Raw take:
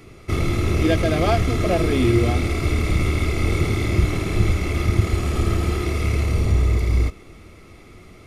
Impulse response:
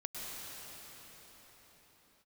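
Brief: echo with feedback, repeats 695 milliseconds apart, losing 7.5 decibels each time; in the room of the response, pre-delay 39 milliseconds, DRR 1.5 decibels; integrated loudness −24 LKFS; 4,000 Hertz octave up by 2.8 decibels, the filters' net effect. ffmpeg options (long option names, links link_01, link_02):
-filter_complex "[0:a]equalizer=frequency=4000:width_type=o:gain=3.5,aecho=1:1:695|1390|2085|2780|3475:0.422|0.177|0.0744|0.0312|0.0131,asplit=2[link_01][link_02];[1:a]atrim=start_sample=2205,adelay=39[link_03];[link_02][link_03]afir=irnorm=-1:irlink=0,volume=-3dB[link_04];[link_01][link_04]amix=inputs=2:normalize=0,volume=-6.5dB"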